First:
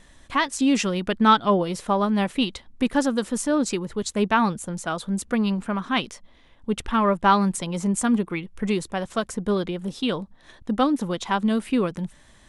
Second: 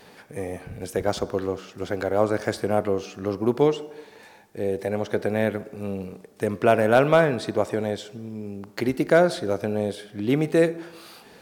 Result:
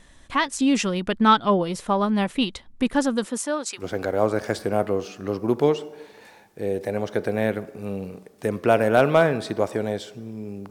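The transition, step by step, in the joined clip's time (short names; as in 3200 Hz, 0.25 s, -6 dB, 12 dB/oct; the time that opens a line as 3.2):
first
3.25–3.86 HPF 180 Hz -> 1400 Hz
3.78 switch to second from 1.76 s, crossfade 0.16 s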